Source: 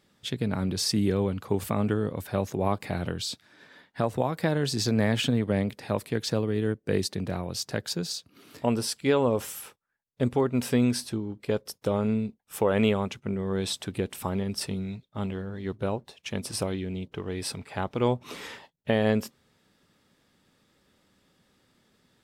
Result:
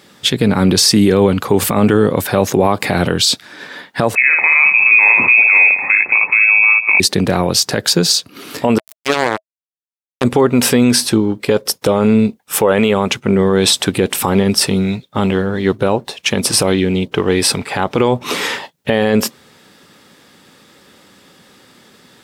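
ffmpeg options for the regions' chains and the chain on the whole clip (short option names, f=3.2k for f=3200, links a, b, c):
-filter_complex "[0:a]asettb=1/sr,asplit=3[a][b][c];[a]atrim=end=4.154[d];[b]atrim=start=4.15:end=7,asetpts=PTS-STARTPTS,afade=t=in:d=0.004:c=qsin,afade=t=out:st=2.846:d=0.004:c=qsin,equalizer=f=1.1k:t=o:w=1.3:g=-4,aecho=1:1:57|193:0.447|0.133,atrim=end_sample=125685,lowpass=f=2.3k:t=q:w=0.5098,lowpass=f=2.3k:t=q:w=0.6013,lowpass=f=2.3k:t=q:w=0.9,lowpass=f=2.3k:t=q:w=2.563,afreqshift=-2700[e];[c]atrim=start=6.996[f];[d][e]acrossfade=d=0.004:c1=hsin:c2=qsin[g];[g][f]acrossfade=d=0.004:c1=qsin:c2=hsin,asettb=1/sr,asplit=3[h][i][j];[h]atrim=end=8.784[k];[i]atrim=start=8.78:end=10.24,asetpts=PTS-STARTPTS,afade=t=in:d=0.004:c=qsin,afade=t=out:st=1.456:d=0.004:c=qsin,acrusher=bits=2:mix=0:aa=0.5,highshelf=f=8k:g=8.5[l];[j]atrim=start=10.236[m];[k][l]acrossfade=d=0.004:c1=hsin:c2=qsin[n];[n][m]acrossfade=d=0.004:c1=qsin:c2=hsin,highpass=f=240:p=1,bandreject=f=640:w=16,alimiter=level_in=22.5dB:limit=-1dB:release=50:level=0:latency=1,volume=-1dB"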